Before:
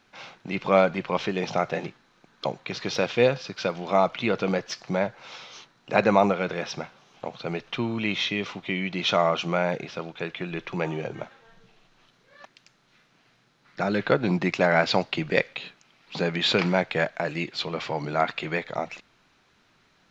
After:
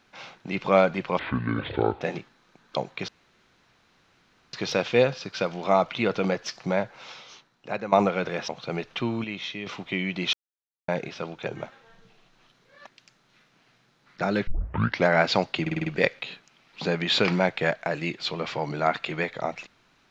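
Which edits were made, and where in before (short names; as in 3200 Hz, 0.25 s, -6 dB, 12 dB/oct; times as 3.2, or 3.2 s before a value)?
1.19–1.7 speed 62%
2.77 insert room tone 1.45 s
5.22–6.16 fade out, to -15.5 dB
6.72–7.25 cut
8.01–8.43 gain -7.5 dB
9.1–9.65 mute
10.23–11.05 cut
14.06 tape start 0.59 s
15.2 stutter 0.05 s, 6 plays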